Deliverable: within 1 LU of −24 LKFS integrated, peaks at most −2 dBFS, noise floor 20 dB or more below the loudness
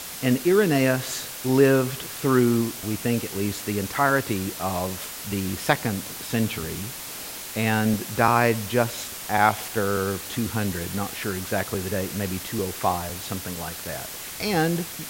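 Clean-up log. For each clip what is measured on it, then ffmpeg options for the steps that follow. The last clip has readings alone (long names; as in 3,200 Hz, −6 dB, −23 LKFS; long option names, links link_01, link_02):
background noise floor −36 dBFS; target noise floor −45 dBFS; integrated loudness −24.5 LKFS; sample peak −3.0 dBFS; target loudness −24.0 LKFS
→ -af "afftdn=noise_reduction=9:noise_floor=-36"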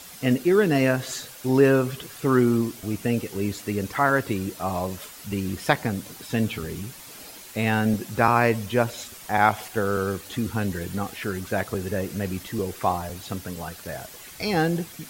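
background noise floor −43 dBFS; target noise floor −45 dBFS
→ -af "afftdn=noise_reduction=6:noise_floor=-43"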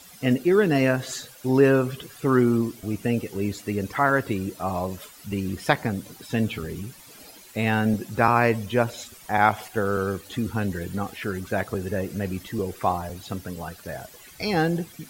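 background noise floor −48 dBFS; integrated loudness −25.0 LKFS; sample peak −3.5 dBFS; target loudness −24.0 LKFS
→ -af "volume=1dB"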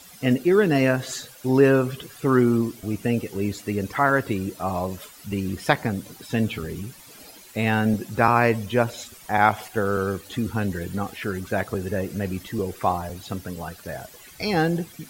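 integrated loudness −24.0 LKFS; sample peak −2.5 dBFS; background noise floor −47 dBFS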